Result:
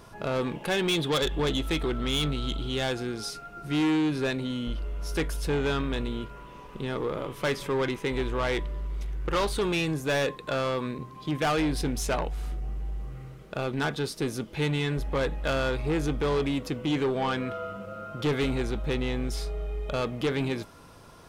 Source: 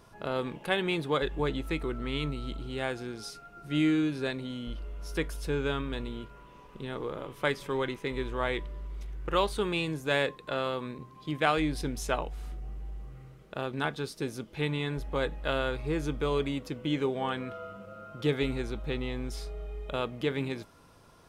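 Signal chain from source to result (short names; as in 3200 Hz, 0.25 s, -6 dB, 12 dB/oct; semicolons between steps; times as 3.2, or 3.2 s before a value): 0.88–2.93 bell 3400 Hz +11 dB 0.35 oct; soft clip -28.5 dBFS, distortion -9 dB; gain +7 dB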